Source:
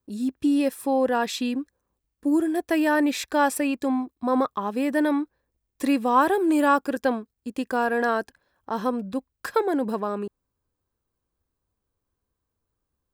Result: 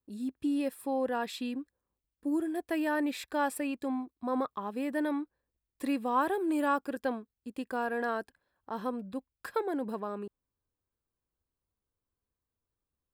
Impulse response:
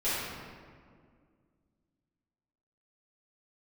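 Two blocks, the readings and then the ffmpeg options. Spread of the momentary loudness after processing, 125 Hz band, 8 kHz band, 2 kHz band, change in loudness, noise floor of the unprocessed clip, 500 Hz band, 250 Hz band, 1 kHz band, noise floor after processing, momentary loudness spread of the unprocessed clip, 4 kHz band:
12 LU, can't be measured, −11.0 dB, −9.0 dB, −9.0 dB, −82 dBFS, −9.0 dB, −9.0 dB, −9.0 dB, below −85 dBFS, 12 LU, −10.0 dB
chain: -af "equalizer=frequency=6100:width_type=o:width=0.4:gain=-8.5,volume=-9dB"

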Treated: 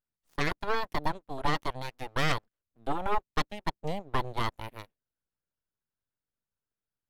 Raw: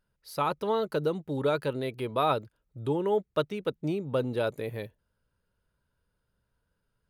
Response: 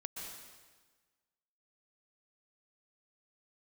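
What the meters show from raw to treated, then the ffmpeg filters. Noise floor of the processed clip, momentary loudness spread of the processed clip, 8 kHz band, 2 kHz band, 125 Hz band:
below −85 dBFS, 11 LU, can't be measured, +6.0 dB, −2.0 dB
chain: -filter_complex "[0:a]aeval=exprs='abs(val(0))':channel_layout=same,aeval=exprs='0.211*(cos(1*acos(clip(val(0)/0.211,-1,1)))-cos(1*PI/2))+0.0531*(cos(3*acos(clip(val(0)/0.211,-1,1)))-cos(3*PI/2))+0.0668*(cos(6*acos(clip(val(0)/0.211,-1,1)))-cos(6*PI/2))+0.015*(cos(7*acos(clip(val(0)/0.211,-1,1)))-cos(7*PI/2))':channel_layout=same[link_01];[1:a]atrim=start_sample=2205,atrim=end_sample=4410,asetrate=36603,aresample=44100[link_02];[link_01][link_02]afir=irnorm=-1:irlink=0"

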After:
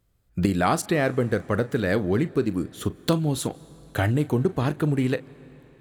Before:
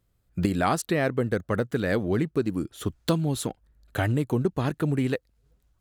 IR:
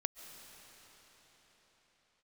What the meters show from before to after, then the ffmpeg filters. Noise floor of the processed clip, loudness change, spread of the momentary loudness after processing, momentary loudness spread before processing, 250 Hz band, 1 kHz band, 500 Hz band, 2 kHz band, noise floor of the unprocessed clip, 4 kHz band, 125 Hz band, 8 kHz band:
−62 dBFS, +2.0 dB, 8 LU, 7 LU, +2.0 dB, +2.0 dB, +2.0 dB, +2.0 dB, −71 dBFS, +2.0 dB, +2.5 dB, +2.0 dB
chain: -filter_complex "[0:a]asplit=2[link_01][link_02];[1:a]atrim=start_sample=2205,asetrate=57330,aresample=44100,adelay=40[link_03];[link_02][link_03]afir=irnorm=-1:irlink=0,volume=-12dB[link_04];[link_01][link_04]amix=inputs=2:normalize=0,volume=2dB"

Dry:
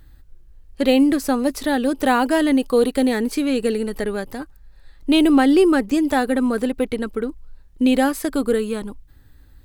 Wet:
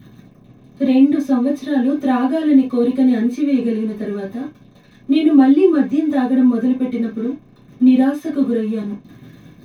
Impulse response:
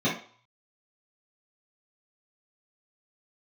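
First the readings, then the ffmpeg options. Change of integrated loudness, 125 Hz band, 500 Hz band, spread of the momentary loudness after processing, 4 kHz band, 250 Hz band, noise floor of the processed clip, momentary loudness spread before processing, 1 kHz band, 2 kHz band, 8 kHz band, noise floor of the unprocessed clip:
+3.0 dB, can't be measured, −1.5 dB, 12 LU, −7.5 dB, +4.5 dB, −48 dBFS, 12 LU, −3.0 dB, −6.0 dB, below −10 dB, −49 dBFS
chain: -filter_complex "[0:a]aeval=exprs='val(0)+0.5*0.0299*sgn(val(0))':channel_layout=same[link_01];[1:a]atrim=start_sample=2205,atrim=end_sample=3528[link_02];[link_01][link_02]afir=irnorm=-1:irlink=0,volume=-17.5dB"

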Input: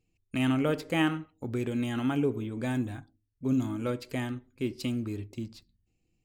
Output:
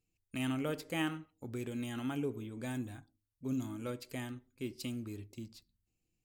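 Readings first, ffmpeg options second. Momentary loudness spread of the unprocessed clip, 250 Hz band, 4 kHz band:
10 LU, −9.0 dB, −6.0 dB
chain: -af "aemphasis=mode=production:type=cd,volume=-8.5dB"

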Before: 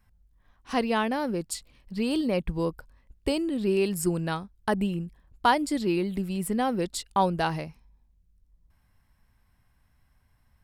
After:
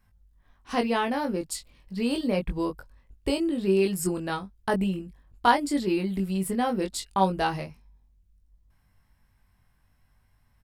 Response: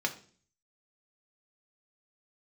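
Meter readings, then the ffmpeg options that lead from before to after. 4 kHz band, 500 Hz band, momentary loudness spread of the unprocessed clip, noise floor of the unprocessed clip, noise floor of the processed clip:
+0.5 dB, +0.5 dB, 10 LU, −66 dBFS, −66 dBFS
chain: -filter_complex "[0:a]asplit=2[link_01][link_02];[link_02]adelay=21,volume=-4dB[link_03];[link_01][link_03]amix=inputs=2:normalize=0,volume=-1dB"

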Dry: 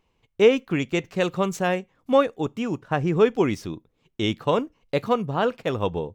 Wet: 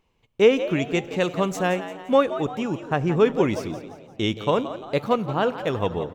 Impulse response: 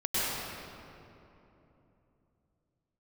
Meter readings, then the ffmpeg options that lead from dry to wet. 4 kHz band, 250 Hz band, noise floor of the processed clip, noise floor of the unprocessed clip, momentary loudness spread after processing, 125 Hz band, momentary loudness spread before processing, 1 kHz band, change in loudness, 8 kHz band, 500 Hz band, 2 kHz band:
+0.5 dB, +0.5 dB, −68 dBFS, −71 dBFS, 9 LU, +0.5 dB, 9 LU, +0.5 dB, +0.5 dB, +0.5 dB, +0.5 dB, +0.5 dB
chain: -filter_complex "[0:a]asplit=5[link_01][link_02][link_03][link_04][link_05];[link_02]adelay=173,afreqshift=100,volume=-12.5dB[link_06];[link_03]adelay=346,afreqshift=200,volume=-19.8dB[link_07];[link_04]adelay=519,afreqshift=300,volume=-27.2dB[link_08];[link_05]adelay=692,afreqshift=400,volume=-34.5dB[link_09];[link_01][link_06][link_07][link_08][link_09]amix=inputs=5:normalize=0,asplit=2[link_10][link_11];[1:a]atrim=start_sample=2205,asetrate=70560,aresample=44100,lowshelf=frequency=140:gain=10[link_12];[link_11][link_12]afir=irnorm=-1:irlink=0,volume=-27.5dB[link_13];[link_10][link_13]amix=inputs=2:normalize=0"

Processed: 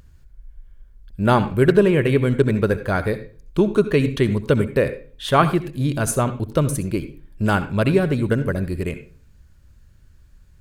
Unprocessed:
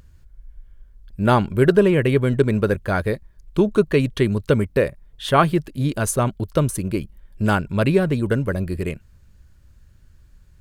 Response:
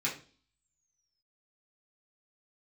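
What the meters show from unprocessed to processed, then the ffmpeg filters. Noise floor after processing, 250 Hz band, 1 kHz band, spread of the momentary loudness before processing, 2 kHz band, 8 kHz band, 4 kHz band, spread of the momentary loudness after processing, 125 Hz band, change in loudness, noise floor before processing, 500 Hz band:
−51 dBFS, +0.5 dB, 0.0 dB, 10 LU, +0.5 dB, 0.0 dB, 0.0 dB, 10 LU, +0.5 dB, 0.0 dB, −52 dBFS, 0.0 dB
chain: -filter_complex "[0:a]asplit=2[link_01][link_02];[1:a]atrim=start_sample=2205,adelay=65[link_03];[link_02][link_03]afir=irnorm=-1:irlink=0,volume=-17.5dB[link_04];[link_01][link_04]amix=inputs=2:normalize=0"

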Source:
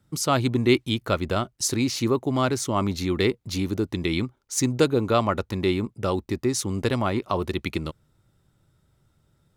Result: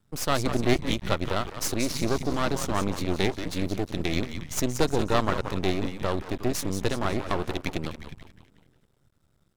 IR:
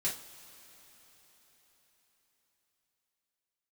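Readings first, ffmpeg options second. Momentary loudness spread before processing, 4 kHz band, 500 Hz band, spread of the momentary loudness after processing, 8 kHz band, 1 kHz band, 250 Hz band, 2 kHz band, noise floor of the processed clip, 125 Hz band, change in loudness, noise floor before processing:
6 LU, −2.5 dB, −3.5 dB, 6 LU, −4.0 dB, −2.0 dB, −4.0 dB, −1.0 dB, −67 dBFS, −3.5 dB, −3.5 dB, −67 dBFS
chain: -filter_complex "[0:a]asplit=7[link_01][link_02][link_03][link_04][link_05][link_06][link_07];[link_02]adelay=179,afreqshift=-90,volume=-8dB[link_08];[link_03]adelay=358,afreqshift=-180,volume=-14.4dB[link_09];[link_04]adelay=537,afreqshift=-270,volume=-20.8dB[link_10];[link_05]adelay=716,afreqshift=-360,volume=-27.1dB[link_11];[link_06]adelay=895,afreqshift=-450,volume=-33.5dB[link_12];[link_07]adelay=1074,afreqshift=-540,volume=-39.9dB[link_13];[link_01][link_08][link_09][link_10][link_11][link_12][link_13]amix=inputs=7:normalize=0,aeval=exprs='max(val(0),0)':channel_layout=same"

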